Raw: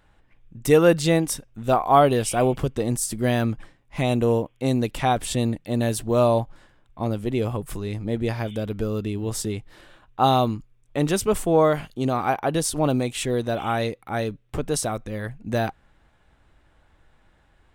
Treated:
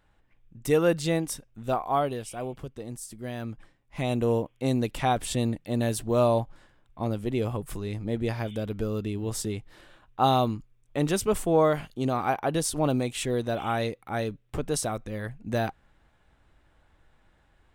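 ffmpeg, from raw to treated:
ffmpeg -i in.wav -af "volume=4dB,afade=type=out:start_time=1.64:duration=0.63:silence=0.421697,afade=type=in:start_time=3.33:duration=1.09:silence=0.298538" out.wav

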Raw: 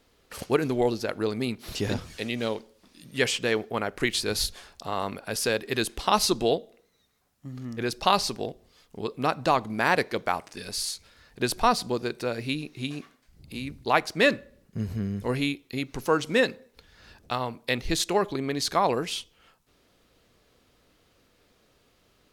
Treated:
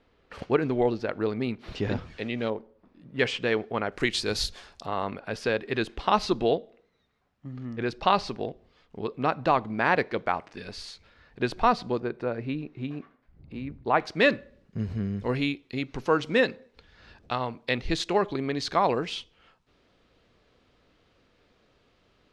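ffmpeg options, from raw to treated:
ffmpeg -i in.wav -af "asetnsamples=nb_out_samples=441:pad=0,asendcmd='2.5 lowpass f 1200;3.19 lowpass f 3200;3.92 lowpass f 6300;4.86 lowpass f 2900;12 lowpass f 1600;14 lowpass f 4100',lowpass=2700" out.wav

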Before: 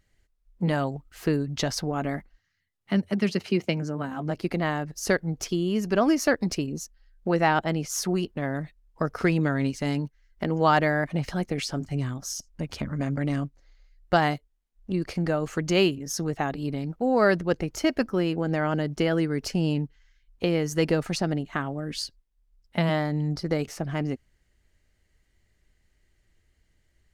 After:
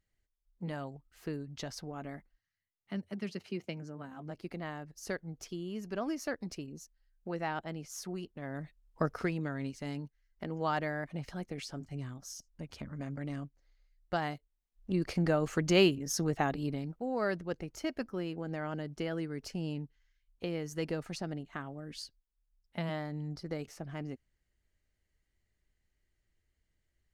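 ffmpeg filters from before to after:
ffmpeg -i in.wav -af "volume=5dB,afade=type=in:start_time=8.39:duration=0.65:silence=0.316228,afade=type=out:start_time=9.04:duration=0.27:silence=0.398107,afade=type=in:start_time=14.35:duration=0.74:silence=0.354813,afade=type=out:start_time=16.49:duration=0.57:silence=0.354813" out.wav

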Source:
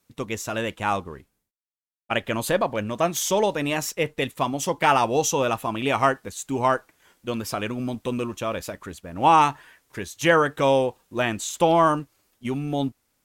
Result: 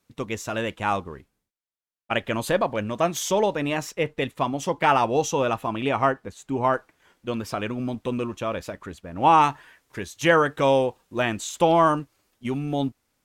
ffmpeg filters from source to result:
ffmpeg -i in.wav -af "asetnsamples=nb_out_samples=441:pad=0,asendcmd='3.32 lowpass f 3200;5.89 lowpass f 1700;6.74 lowpass f 3600;9.44 lowpass f 7100',lowpass=frequency=6000:poles=1" out.wav

